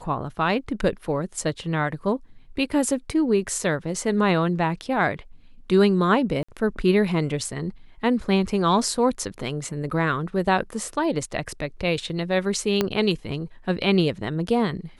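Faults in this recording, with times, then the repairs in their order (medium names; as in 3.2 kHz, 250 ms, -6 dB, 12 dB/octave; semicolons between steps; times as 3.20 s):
6.43–6.49 s: dropout 55 ms
12.81 s: pop -7 dBFS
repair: de-click; interpolate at 6.43 s, 55 ms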